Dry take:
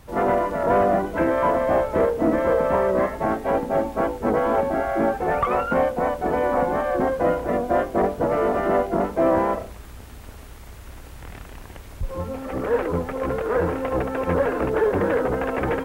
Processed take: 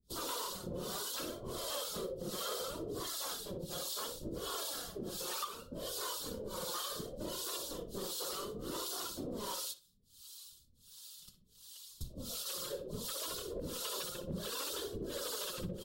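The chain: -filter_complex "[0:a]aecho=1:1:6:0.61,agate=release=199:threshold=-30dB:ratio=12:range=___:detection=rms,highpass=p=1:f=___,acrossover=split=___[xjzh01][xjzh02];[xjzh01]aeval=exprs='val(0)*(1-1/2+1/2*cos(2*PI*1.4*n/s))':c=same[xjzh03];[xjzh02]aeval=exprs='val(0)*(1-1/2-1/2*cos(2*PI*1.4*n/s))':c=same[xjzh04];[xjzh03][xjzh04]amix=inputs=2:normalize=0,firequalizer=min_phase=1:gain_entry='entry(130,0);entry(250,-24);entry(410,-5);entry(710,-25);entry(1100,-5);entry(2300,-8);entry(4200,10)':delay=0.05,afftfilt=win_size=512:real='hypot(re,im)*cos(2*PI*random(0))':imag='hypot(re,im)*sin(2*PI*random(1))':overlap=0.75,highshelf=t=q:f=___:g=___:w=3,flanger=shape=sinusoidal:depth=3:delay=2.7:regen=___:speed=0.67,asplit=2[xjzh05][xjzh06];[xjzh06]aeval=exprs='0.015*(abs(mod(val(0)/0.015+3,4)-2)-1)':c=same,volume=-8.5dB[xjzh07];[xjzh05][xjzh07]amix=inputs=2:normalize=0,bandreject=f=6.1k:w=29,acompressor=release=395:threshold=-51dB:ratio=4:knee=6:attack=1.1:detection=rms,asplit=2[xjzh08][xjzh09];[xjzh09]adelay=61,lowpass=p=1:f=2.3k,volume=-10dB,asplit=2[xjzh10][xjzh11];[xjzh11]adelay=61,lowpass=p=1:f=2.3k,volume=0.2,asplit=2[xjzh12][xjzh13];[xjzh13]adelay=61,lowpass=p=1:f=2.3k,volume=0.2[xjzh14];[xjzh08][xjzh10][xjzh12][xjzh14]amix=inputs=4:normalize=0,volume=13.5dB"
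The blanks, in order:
-25dB, 130, 430, 2.6k, 8.5, 36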